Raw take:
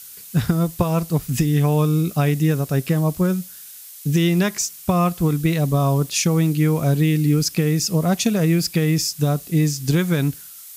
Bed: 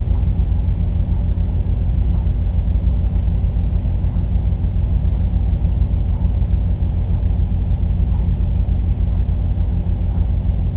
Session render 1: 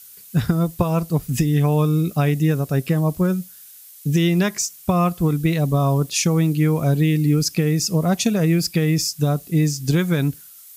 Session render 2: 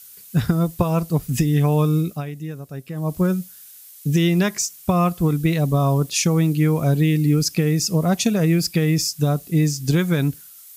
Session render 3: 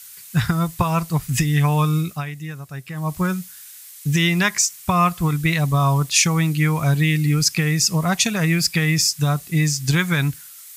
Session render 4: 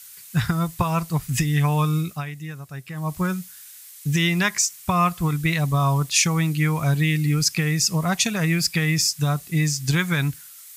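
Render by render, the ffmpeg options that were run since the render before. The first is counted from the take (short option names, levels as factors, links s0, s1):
-af "afftdn=nr=6:nf=-40"
-filter_complex "[0:a]asplit=3[s0][s1][s2];[s0]atrim=end=2.25,asetpts=PTS-STARTPTS,afade=t=out:st=1.97:d=0.28:silence=0.237137[s3];[s1]atrim=start=2.25:end=2.92,asetpts=PTS-STARTPTS,volume=0.237[s4];[s2]atrim=start=2.92,asetpts=PTS-STARTPTS,afade=t=in:d=0.28:silence=0.237137[s5];[s3][s4][s5]concat=n=3:v=0:a=1"
-af "equalizer=f=125:t=o:w=1:g=3,equalizer=f=250:t=o:w=1:g=-6,equalizer=f=500:t=o:w=1:g=-7,equalizer=f=1000:t=o:w=1:g=6,equalizer=f=2000:t=o:w=1:g=8,equalizer=f=4000:t=o:w=1:g=3,equalizer=f=8000:t=o:w=1:g=5"
-af "volume=0.75"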